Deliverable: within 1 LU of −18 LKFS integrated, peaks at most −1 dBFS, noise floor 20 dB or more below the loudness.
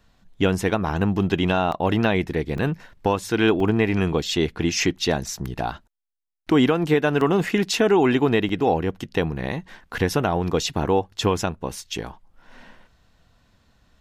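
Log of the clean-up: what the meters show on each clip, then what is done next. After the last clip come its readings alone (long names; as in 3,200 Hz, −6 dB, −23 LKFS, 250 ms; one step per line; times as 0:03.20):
number of dropouts 6; longest dropout 2.6 ms; integrated loudness −22.5 LKFS; sample peak −7.5 dBFS; target loudness −18.0 LKFS
→ repair the gap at 0:01.72/0:02.58/0:03.60/0:05.46/0:07.21/0:08.49, 2.6 ms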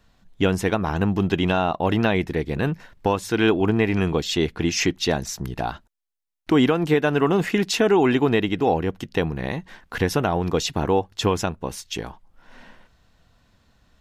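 number of dropouts 0; integrated loudness −22.5 LKFS; sample peak −7.5 dBFS; target loudness −18.0 LKFS
→ level +4.5 dB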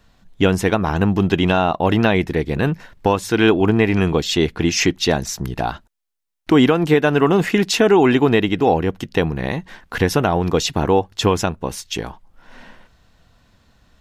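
integrated loudness −18.0 LKFS; sample peak −3.0 dBFS; background noise floor −58 dBFS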